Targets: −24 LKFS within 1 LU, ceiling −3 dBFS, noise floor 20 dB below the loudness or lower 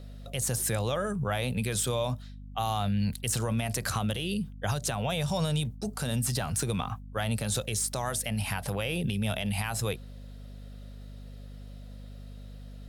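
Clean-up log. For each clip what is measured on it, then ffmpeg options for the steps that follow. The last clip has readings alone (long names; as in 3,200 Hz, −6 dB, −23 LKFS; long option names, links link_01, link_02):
mains hum 50 Hz; hum harmonics up to 250 Hz; level of the hum −40 dBFS; integrated loudness −30.5 LKFS; sample peak −17.0 dBFS; target loudness −24.0 LKFS
→ -af "bandreject=frequency=50:width_type=h:width=6,bandreject=frequency=100:width_type=h:width=6,bandreject=frequency=150:width_type=h:width=6,bandreject=frequency=200:width_type=h:width=6,bandreject=frequency=250:width_type=h:width=6"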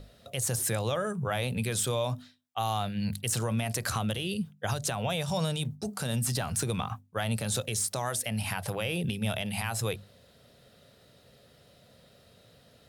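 mains hum none found; integrated loudness −31.0 LKFS; sample peak −17.0 dBFS; target loudness −24.0 LKFS
→ -af "volume=7dB"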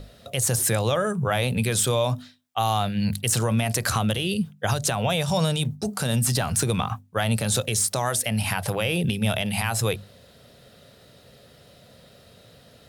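integrated loudness −24.0 LKFS; sample peak −10.0 dBFS; background noise floor −53 dBFS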